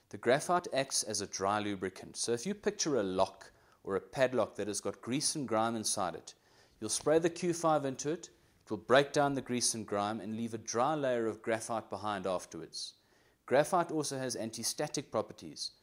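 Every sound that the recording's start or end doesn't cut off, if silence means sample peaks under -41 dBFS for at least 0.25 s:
3.87–6.3
6.82–8.25
8.71–12.89

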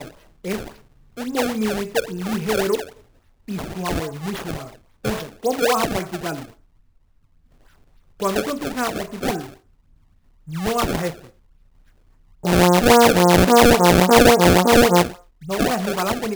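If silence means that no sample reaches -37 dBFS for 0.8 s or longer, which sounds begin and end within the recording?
8.2–9.54
10.47–11.27

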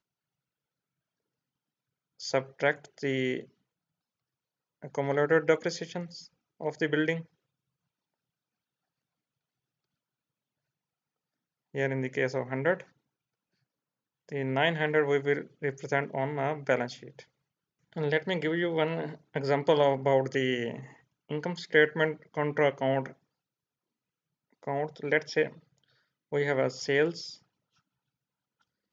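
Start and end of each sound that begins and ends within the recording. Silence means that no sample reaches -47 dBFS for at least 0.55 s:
2.2–3.45
4.82–7.24
11.74–12.83
14.29–17.23
17.93–23.12
24.63–25.58
26.32–27.36

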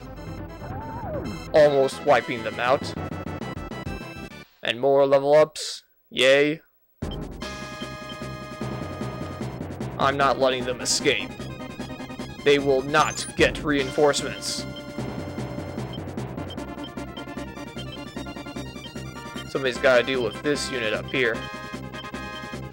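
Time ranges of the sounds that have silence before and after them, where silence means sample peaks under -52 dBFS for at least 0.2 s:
6.11–6.66

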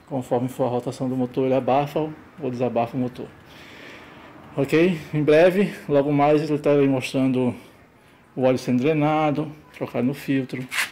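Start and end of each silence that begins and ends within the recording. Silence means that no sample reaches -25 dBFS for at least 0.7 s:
3.24–4.58
7.52–8.38

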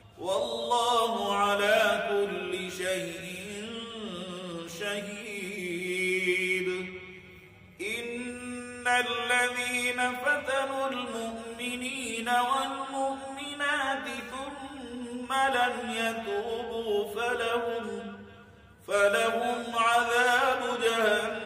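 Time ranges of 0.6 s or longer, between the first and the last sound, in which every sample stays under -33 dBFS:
6.98–7.8
18.09–18.89

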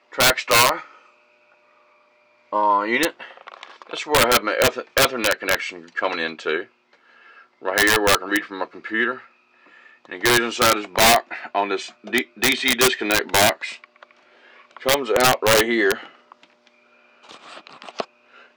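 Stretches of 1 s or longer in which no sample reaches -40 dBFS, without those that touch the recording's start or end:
0.99–2.52

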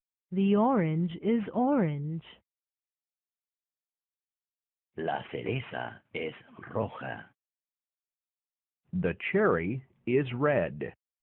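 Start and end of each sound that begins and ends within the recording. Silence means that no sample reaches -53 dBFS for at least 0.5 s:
4.97–7.29

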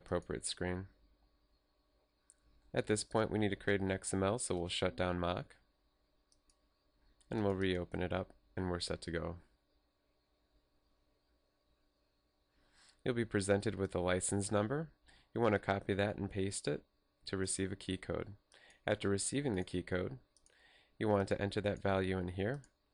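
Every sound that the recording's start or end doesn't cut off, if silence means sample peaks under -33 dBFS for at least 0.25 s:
2.75–5.4
7.32–8.22
8.58–9.3
13.06–14.82
15.36–16.76
17.33–18.22
18.88–20.07
21.01–22.54

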